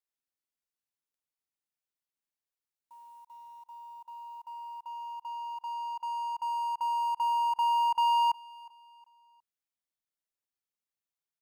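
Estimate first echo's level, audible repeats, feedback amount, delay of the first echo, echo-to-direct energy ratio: −22.0 dB, 2, 39%, 362 ms, −21.5 dB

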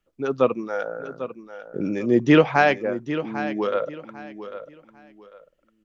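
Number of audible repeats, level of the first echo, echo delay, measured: 2, −12.0 dB, 797 ms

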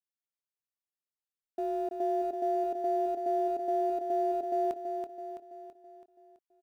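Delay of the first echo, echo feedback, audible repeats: 330 ms, 52%, 6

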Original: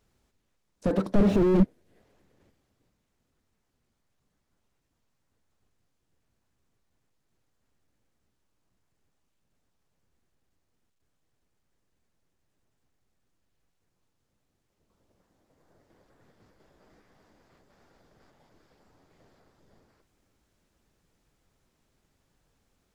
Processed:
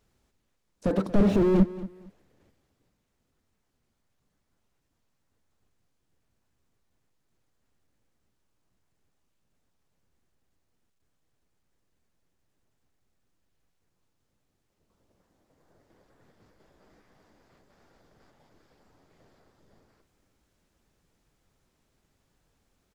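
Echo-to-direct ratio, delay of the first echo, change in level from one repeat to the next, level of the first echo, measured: −16.5 dB, 230 ms, −13.0 dB, −16.5 dB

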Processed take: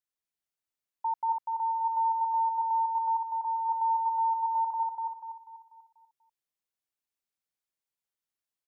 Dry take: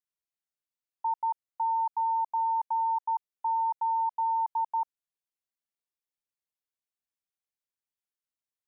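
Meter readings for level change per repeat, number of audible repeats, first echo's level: −7.5 dB, 5, −3.0 dB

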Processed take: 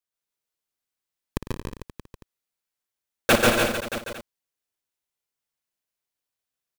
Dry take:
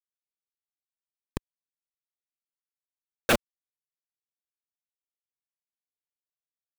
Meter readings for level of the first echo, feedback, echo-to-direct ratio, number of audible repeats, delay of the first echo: −11.0 dB, repeats not evenly spaced, 3.0 dB, 14, 57 ms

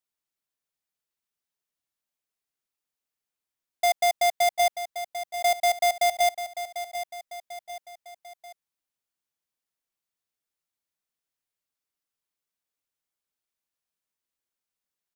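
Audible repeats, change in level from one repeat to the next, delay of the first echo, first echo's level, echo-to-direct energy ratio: 3, −6.5 dB, 745 ms, −11.0 dB, −10.0 dB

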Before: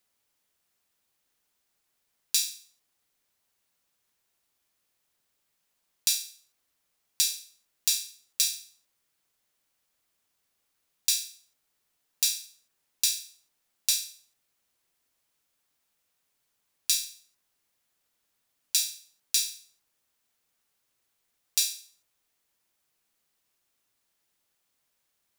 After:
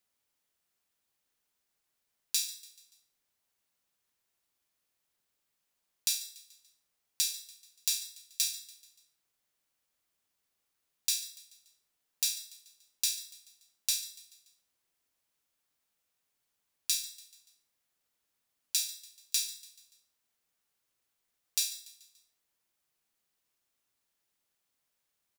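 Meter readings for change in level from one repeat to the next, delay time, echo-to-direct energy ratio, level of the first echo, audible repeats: −6.0 dB, 144 ms, −17.0 dB, −18.0 dB, 3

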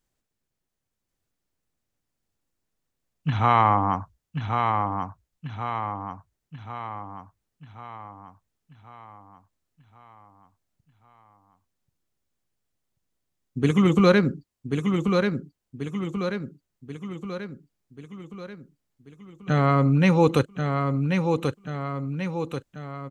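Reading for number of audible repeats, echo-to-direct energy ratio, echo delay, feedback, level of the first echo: 6, −3.5 dB, 1,086 ms, 52%, −5.0 dB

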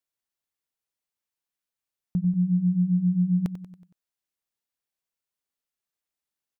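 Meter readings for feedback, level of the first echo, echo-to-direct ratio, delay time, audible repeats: 52%, −12.0 dB, −10.5 dB, 93 ms, 5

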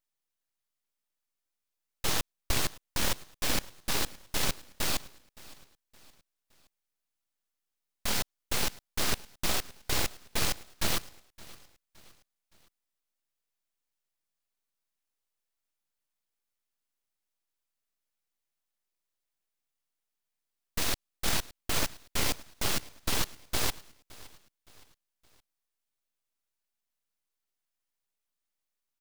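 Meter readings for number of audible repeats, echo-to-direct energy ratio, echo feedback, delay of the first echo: 2, −20.0 dB, 42%, 567 ms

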